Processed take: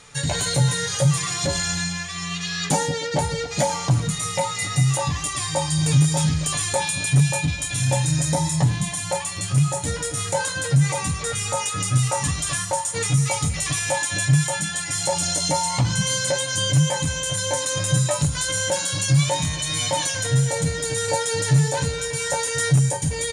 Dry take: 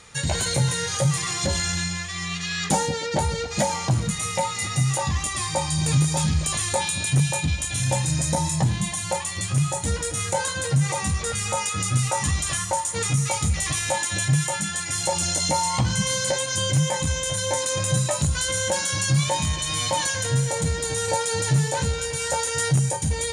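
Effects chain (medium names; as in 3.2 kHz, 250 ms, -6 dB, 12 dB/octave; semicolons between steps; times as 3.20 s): comb 7 ms, depth 52%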